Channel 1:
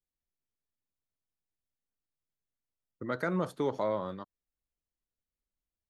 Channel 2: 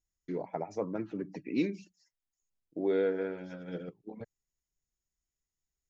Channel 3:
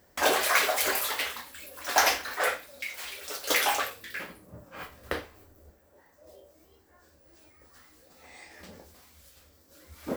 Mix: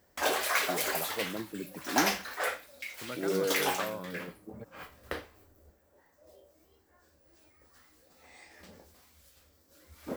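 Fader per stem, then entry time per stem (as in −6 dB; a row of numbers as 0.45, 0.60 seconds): −7.5, −2.5, −5.0 decibels; 0.00, 0.40, 0.00 seconds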